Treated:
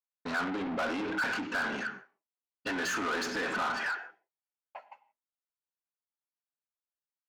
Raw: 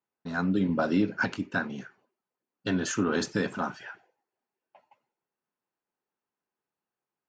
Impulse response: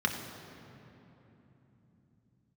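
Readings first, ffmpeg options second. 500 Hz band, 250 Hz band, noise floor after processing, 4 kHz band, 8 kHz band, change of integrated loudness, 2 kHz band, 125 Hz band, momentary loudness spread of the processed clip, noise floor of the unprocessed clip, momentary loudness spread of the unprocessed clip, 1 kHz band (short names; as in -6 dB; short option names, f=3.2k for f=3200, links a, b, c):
-5.0 dB, -8.5 dB, under -85 dBFS, +1.0 dB, -3.5 dB, -3.5 dB, +2.0 dB, -15.5 dB, 19 LU, under -85 dBFS, 12 LU, +1.5 dB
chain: -filter_complex "[0:a]agate=range=-33dB:threshold=-54dB:ratio=3:detection=peak,asplit=2[a][b];[1:a]atrim=start_sample=2205,afade=t=out:st=0.23:d=0.01,atrim=end_sample=10584[c];[b][c]afir=irnorm=-1:irlink=0,volume=-15.5dB[d];[a][d]amix=inputs=2:normalize=0,alimiter=limit=-23dB:level=0:latency=1:release=44,asplit=2[e][f];[f]highpass=f=720:p=1,volume=24dB,asoftclip=type=tanh:threshold=-23dB[g];[e][g]amix=inputs=2:normalize=0,lowpass=f=2.7k:p=1,volume=-6dB,lowshelf=f=400:g=-9.5"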